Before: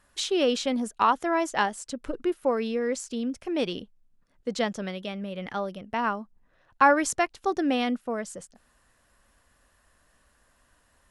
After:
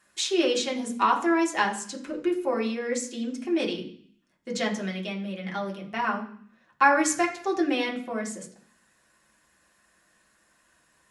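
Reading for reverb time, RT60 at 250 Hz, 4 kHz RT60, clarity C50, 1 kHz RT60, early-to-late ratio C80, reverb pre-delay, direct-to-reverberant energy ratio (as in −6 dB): 0.55 s, 0.70 s, 0.65 s, 10.5 dB, 0.55 s, 14.0 dB, 3 ms, −2.0 dB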